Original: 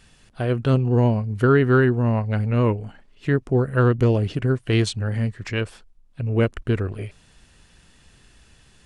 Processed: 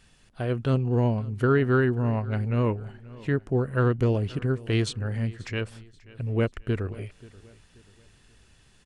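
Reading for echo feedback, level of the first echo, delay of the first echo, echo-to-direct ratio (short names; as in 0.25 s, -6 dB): 39%, -21.0 dB, 0.533 s, -20.5 dB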